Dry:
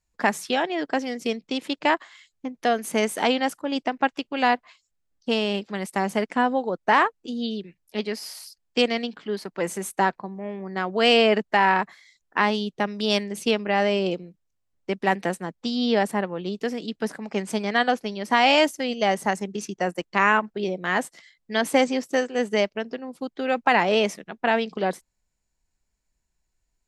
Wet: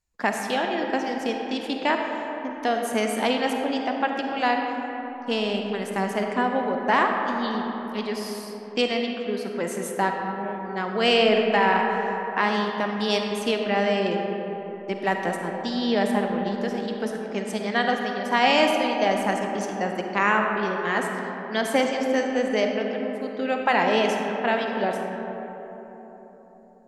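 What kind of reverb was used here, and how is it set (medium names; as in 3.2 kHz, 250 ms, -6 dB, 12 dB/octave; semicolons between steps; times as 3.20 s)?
algorithmic reverb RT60 4.2 s, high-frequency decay 0.35×, pre-delay 10 ms, DRR 2 dB; trim -2.5 dB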